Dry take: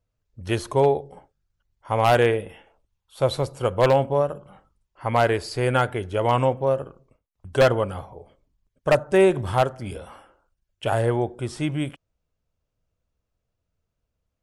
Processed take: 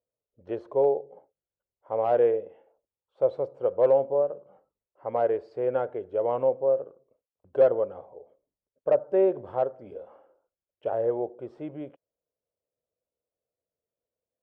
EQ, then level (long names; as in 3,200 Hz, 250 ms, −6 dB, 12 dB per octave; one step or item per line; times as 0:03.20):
resonant band-pass 510 Hz, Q 2.7
high-frequency loss of the air 81 metres
0.0 dB